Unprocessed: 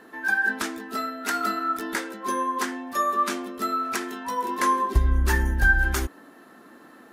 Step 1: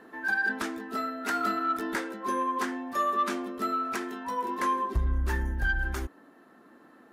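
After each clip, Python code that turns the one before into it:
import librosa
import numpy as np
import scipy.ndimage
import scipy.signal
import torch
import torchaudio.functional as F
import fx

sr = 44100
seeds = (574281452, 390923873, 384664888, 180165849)

y = fx.high_shelf(x, sr, hz=2800.0, db=-8.0)
y = fx.rider(y, sr, range_db=10, speed_s=2.0)
y = 10.0 ** (-15.5 / 20.0) * np.tanh(y / 10.0 ** (-15.5 / 20.0))
y = y * 10.0 ** (-3.0 / 20.0)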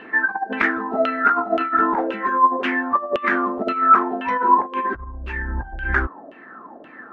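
y = fx.over_compress(x, sr, threshold_db=-31.0, ratio=-0.5)
y = fx.filter_lfo_lowpass(y, sr, shape='saw_down', hz=1.9, low_hz=570.0, high_hz=2900.0, q=7.5)
y = y * 10.0 ** (6.5 / 20.0)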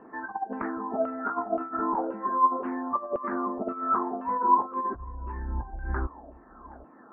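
y = fx.ladder_lowpass(x, sr, hz=1200.0, resonance_pct=45)
y = fx.low_shelf(y, sr, hz=430.0, db=8.5)
y = y + 10.0 ** (-22.5 / 20.0) * np.pad(y, (int(772 * sr / 1000.0), 0))[:len(y)]
y = y * 10.0 ** (-4.5 / 20.0)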